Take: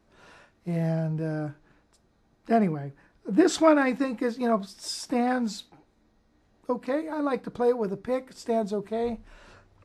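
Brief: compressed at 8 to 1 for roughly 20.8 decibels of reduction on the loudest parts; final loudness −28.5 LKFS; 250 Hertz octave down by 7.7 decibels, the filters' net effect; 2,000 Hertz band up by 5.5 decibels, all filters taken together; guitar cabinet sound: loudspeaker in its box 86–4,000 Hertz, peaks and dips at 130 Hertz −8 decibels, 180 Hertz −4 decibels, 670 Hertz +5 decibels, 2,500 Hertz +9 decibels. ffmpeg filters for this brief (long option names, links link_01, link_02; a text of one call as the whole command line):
ffmpeg -i in.wav -af "equalizer=frequency=250:width_type=o:gain=-9,equalizer=frequency=2000:width_type=o:gain=4.5,acompressor=threshold=-37dB:ratio=8,highpass=86,equalizer=frequency=130:width_type=q:width=4:gain=-8,equalizer=frequency=180:width_type=q:width=4:gain=-4,equalizer=frequency=670:width_type=q:width=4:gain=5,equalizer=frequency=2500:width_type=q:width=4:gain=9,lowpass=frequency=4000:width=0.5412,lowpass=frequency=4000:width=1.3066,volume=12.5dB" out.wav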